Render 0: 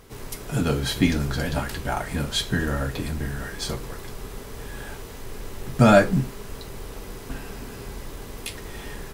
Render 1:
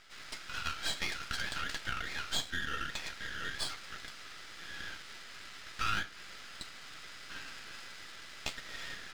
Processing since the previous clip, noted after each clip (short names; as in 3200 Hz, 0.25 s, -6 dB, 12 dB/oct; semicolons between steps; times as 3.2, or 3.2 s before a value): Chebyshev band-pass 1300–5200 Hz, order 4; compressor 3:1, threshold -34 dBFS, peak gain reduction 11.5 dB; half-wave rectifier; gain +4.5 dB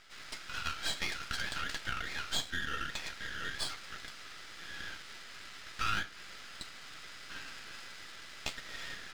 nothing audible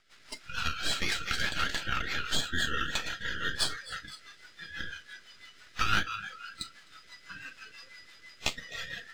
thinning echo 0.257 s, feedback 46%, high-pass 270 Hz, level -9.5 dB; rotary speaker horn 6 Hz; spectral noise reduction 14 dB; gain +8.5 dB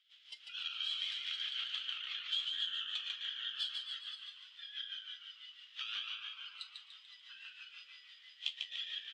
compressor 2:1, threshold -37 dBFS, peak gain reduction 9 dB; band-pass 3200 Hz, Q 8.5; on a send: frequency-shifting echo 0.146 s, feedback 45%, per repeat -92 Hz, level -4 dB; on the sum: gain +6.5 dB